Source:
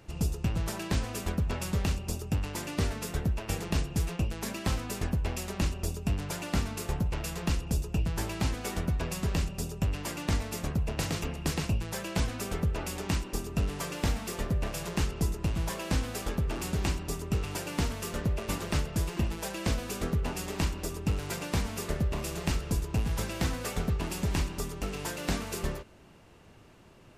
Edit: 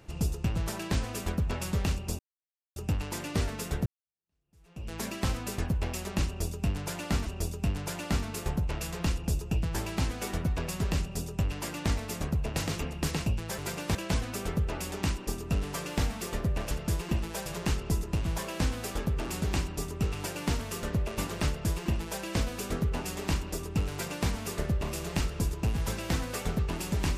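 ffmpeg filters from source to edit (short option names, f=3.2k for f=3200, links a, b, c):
-filter_complex "[0:a]asplit=8[a][b][c][d][e][f][g][h];[a]atrim=end=2.19,asetpts=PTS-STARTPTS,afade=t=out:st=2.186:d=0.004:c=hsin,apad=pad_dur=0.57[i];[b]atrim=start=2.19:end=3.29,asetpts=PTS-STARTPTS,afade=t=in:d=0.004:c=hsin,afade=t=out:st=1.096:d=0.004:c=hsin[j];[c]atrim=start=3.29:end=6.692,asetpts=PTS-STARTPTS,afade=t=in:d=1.06:c=exp[k];[d]atrim=start=5.688:end=12.012[l];[e]atrim=start=21.218:end=21.592[m];[f]atrim=start=12.008:end=14.772[n];[g]atrim=start=18.788:end=19.542[o];[h]atrim=start=14.768[p];[i][j][k]concat=n=3:v=0:a=1[q];[q][l]acrossfade=d=0.004:c1=hsin:c2=hsin[r];[r][m]acrossfade=d=0.004:c1=hsin:c2=hsin[s];[s][n]acrossfade=d=0.004:c1=hsin:c2=hsin[t];[t][o]acrossfade=d=0.004:c1=hsin:c2=hsin[u];[u][p]acrossfade=d=0.004:c1=hsin:c2=hsin"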